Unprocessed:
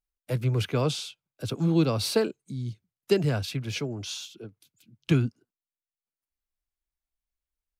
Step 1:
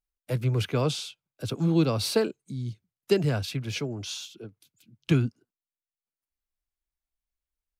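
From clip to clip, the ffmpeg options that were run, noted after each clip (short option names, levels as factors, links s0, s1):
-af anull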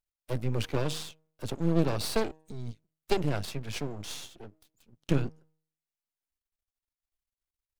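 -af "bandreject=f=157.3:t=h:w=4,bandreject=f=314.6:t=h:w=4,bandreject=f=471.9:t=h:w=4,bandreject=f=629.2:t=h:w=4,bandreject=f=786.5:t=h:w=4,aeval=exprs='max(val(0),0)':c=same"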